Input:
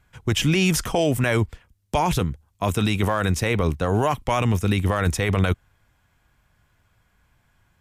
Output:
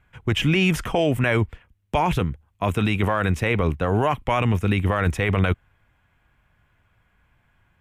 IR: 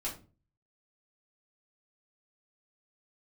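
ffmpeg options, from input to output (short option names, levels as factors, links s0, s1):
-af "highshelf=f=3600:t=q:w=1.5:g=-8.5"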